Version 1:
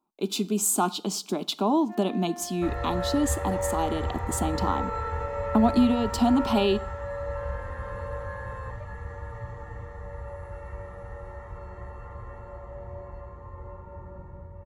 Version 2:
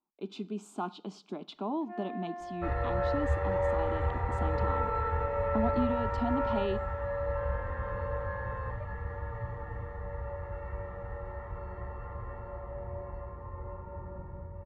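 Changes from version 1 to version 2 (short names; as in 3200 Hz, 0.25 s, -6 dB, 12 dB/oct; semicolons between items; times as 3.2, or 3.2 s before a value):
speech -10.5 dB; master: add LPF 2700 Hz 12 dB/oct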